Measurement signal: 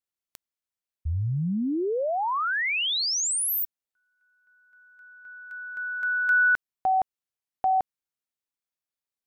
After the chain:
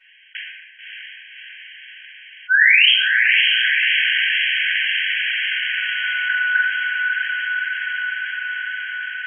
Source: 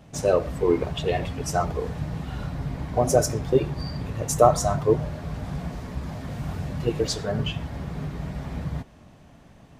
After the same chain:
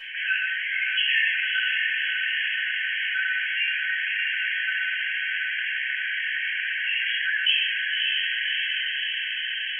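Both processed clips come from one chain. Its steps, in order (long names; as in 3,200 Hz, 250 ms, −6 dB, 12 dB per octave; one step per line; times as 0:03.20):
linear-phase brick-wall band-pass 1,500–3,300 Hz
feedback delay with all-pass diffusion 594 ms, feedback 67%, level −6 dB
rectangular room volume 170 cubic metres, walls mixed, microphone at 4.8 metres
envelope flattener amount 50%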